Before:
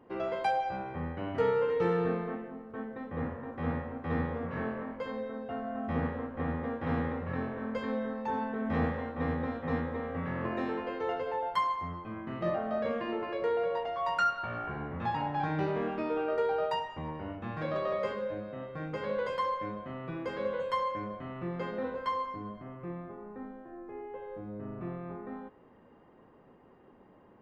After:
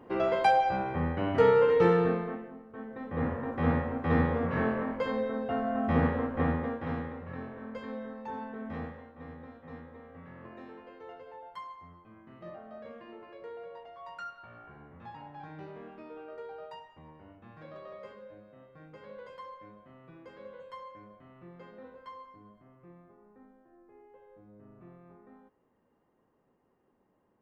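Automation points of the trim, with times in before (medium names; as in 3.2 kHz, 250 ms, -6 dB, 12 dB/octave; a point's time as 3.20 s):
1.85 s +6 dB
2.70 s -5 dB
3.34 s +6 dB
6.43 s +6 dB
7.09 s -6 dB
8.62 s -6 dB
9.09 s -14 dB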